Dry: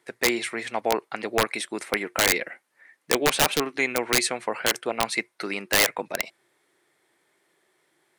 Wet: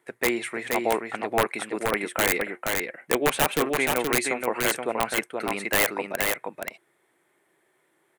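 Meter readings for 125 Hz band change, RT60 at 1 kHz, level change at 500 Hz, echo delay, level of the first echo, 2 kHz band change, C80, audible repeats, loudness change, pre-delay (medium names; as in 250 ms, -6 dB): +1.5 dB, no reverb, +1.5 dB, 475 ms, -4.0 dB, -0.5 dB, no reverb, 1, -1.0 dB, no reverb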